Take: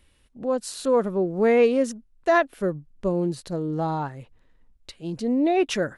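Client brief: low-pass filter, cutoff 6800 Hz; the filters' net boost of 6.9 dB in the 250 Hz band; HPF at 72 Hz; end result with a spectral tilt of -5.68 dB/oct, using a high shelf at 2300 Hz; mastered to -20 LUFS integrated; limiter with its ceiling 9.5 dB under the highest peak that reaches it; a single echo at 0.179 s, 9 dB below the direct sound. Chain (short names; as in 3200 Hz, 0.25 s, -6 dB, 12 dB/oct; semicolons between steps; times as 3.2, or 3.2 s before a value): HPF 72 Hz; LPF 6800 Hz; bell 250 Hz +8.5 dB; high shelf 2300 Hz +5.5 dB; limiter -15 dBFS; echo 0.179 s -9 dB; gain +4 dB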